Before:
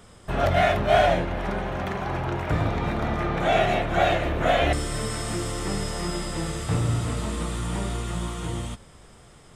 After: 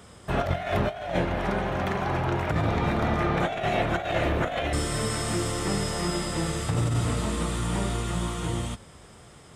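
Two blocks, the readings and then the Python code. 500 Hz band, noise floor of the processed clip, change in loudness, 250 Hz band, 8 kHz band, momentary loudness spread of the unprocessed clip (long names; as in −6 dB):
−3.5 dB, −50 dBFS, −2.0 dB, +0.5 dB, +1.5 dB, 9 LU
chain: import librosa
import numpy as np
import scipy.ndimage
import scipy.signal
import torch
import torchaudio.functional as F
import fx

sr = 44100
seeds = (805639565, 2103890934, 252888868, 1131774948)

y = scipy.signal.sosfilt(scipy.signal.butter(2, 54.0, 'highpass', fs=sr, output='sos'), x)
y = fx.over_compress(y, sr, threshold_db=-24.0, ratio=-0.5)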